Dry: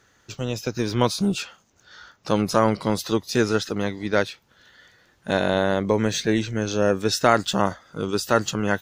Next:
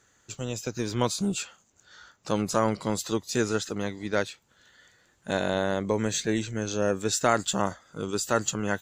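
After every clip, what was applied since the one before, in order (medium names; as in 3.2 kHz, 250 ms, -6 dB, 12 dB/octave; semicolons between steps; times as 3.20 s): peaking EQ 7.4 kHz +13.5 dB 0.31 oct; band-stop 5.3 kHz, Q 21; trim -5.5 dB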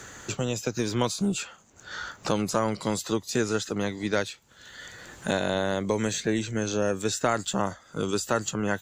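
three bands compressed up and down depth 70%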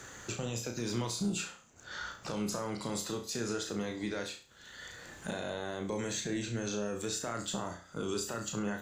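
peak limiter -21 dBFS, peak gain reduction 11.5 dB; on a send: flutter echo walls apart 5.8 m, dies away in 0.37 s; on the sum: trim -5.5 dB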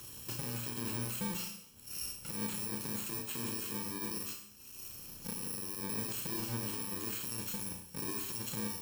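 bit-reversed sample order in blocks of 64 samples; peak limiter -30 dBFS, peak gain reduction 7 dB; Schroeder reverb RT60 0.73 s, combs from 26 ms, DRR 6.5 dB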